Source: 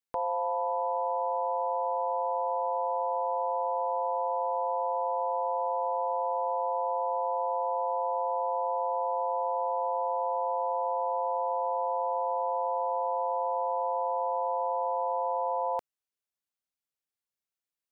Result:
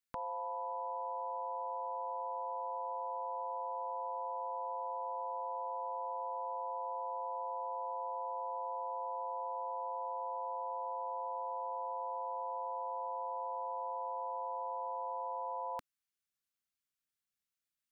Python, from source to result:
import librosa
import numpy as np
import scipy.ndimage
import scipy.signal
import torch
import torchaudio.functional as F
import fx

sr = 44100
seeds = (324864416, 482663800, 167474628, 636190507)

y = fx.band_shelf(x, sr, hz=560.0, db=-12.0, octaves=1.7)